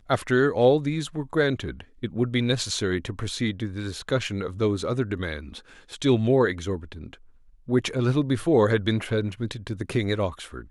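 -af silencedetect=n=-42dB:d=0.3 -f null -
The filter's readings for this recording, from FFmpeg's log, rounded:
silence_start: 7.15
silence_end: 7.68 | silence_duration: 0.53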